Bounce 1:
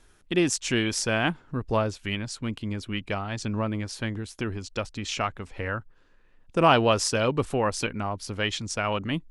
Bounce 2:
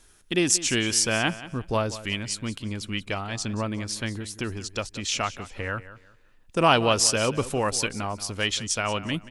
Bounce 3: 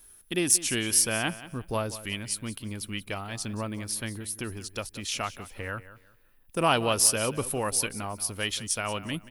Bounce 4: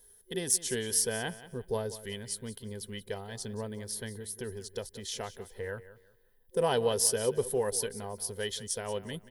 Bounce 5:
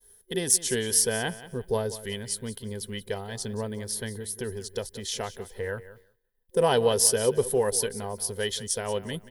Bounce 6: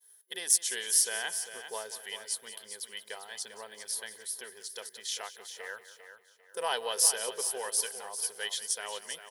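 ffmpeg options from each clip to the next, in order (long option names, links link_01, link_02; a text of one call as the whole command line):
ffmpeg -i in.wav -af "highshelf=frequency=3900:gain=11,aecho=1:1:181|362|543:0.168|0.0436|0.0113,volume=-1dB" out.wav
ffmpeg -i in.wav -af "aexciter=amount=6.3:drive=7.9:freq=9900,volume=-4.5dB" out.wav
ffmpeg -i in.wav -af "superequalizer=6b=0.398:7b=3.16:10b=0.355:12b=0.282,volume=-5.5dB" out.wav
ffmpeg -i in.wav -af "agate=range=-33dB:threshold=-55dB:ratio=3:detection=peak,volume=5.5dB" out.wav
ffmpeg -i in.wav -af "highpass=970,aecho=1:1:398|796|1194:0.299|0.0955|0.0306,volume=-2.5dB" out.wav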